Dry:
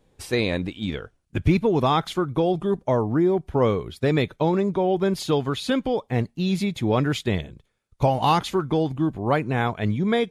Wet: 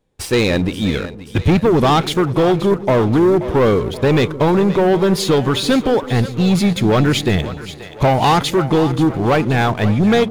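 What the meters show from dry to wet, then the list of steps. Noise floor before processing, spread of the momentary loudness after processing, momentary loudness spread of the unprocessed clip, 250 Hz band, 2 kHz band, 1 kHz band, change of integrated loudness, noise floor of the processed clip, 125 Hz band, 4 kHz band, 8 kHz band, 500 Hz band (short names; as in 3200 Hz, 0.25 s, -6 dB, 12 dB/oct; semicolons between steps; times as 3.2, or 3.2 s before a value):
-68 dBFS, 5 LU, 6 LU, +8.0 dB, +8.5 dB, +7.0 dB, +8.0 dB, -33 dBFS, +8.0 dB, +9.5 dB, +11.5 dB, +8.0 dB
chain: sample leveller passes 3; on a send: split-band echo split 450 Hz, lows 0.167 s, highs 0.529 s, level -13 dB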